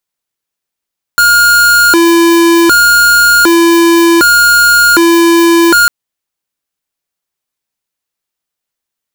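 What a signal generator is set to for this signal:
siren hi-lo 337–1,420 Hz 0.66 per second square −6 dBFS 4.70 s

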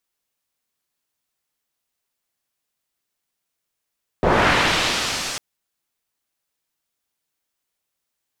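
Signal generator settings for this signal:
filter sweep on noise white, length 1.15 s lowpass, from 520 Hz, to 6,500 Hz, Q 0.94, linear, gain ramp −22 dB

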